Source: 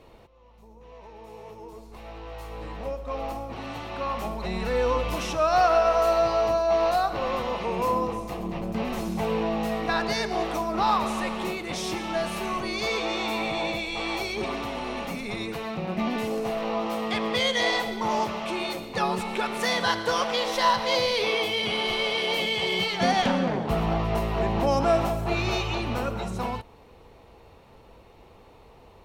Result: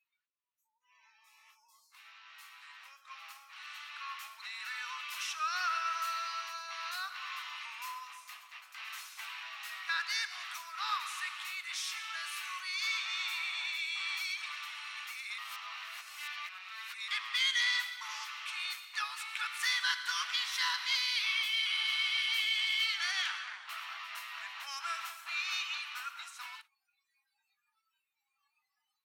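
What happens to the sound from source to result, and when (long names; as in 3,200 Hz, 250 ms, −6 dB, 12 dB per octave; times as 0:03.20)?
0:15.38–0:17.08: reverse
whole clip: Butterworth high-pass 1,300 Hz 36 dB per octave; noise reduction from a noise print of the clip's start 27 dB; level −3.5 dB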